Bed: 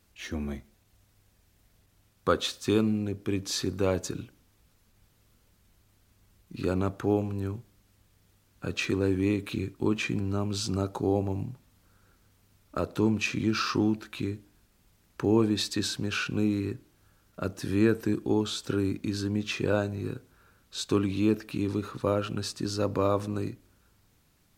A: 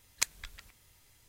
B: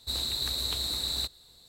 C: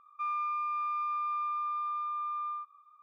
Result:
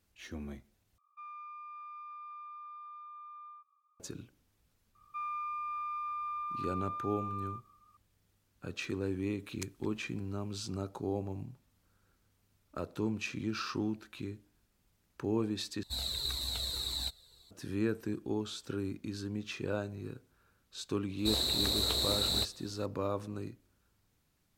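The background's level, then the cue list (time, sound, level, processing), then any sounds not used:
bed -9 dB
0.98 replace with C -14 dB
4.95 add C -5 dB
9.4 add A -14 dB
15.83 replace with B -1 dB + cascading flanger falling 1.8 Hz
21.18 add B -0.5 dB + bell 460 Hz +8 dB 1.7 oct

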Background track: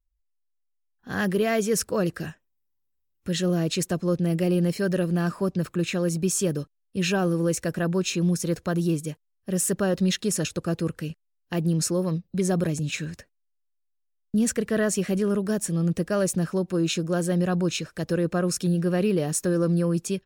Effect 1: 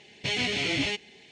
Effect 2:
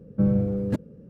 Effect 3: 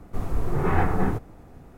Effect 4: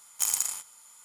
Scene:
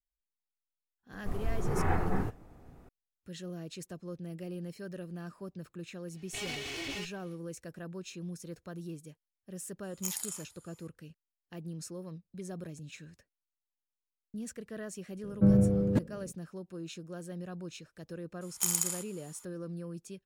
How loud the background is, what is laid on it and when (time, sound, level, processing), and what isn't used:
background track -18 dB
1.12 add 3 -7.5 dB
6.09 add 1 -9.5 dB, fades 0.10 s + minimum comb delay 2.7 ms
9.83 add 4 -11 dB + moving spectral ripple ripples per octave 0.77, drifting -2.9 Hz, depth 8 dB
15.23 add 2 -1.5 dB
18.41 add 4 -3 dB

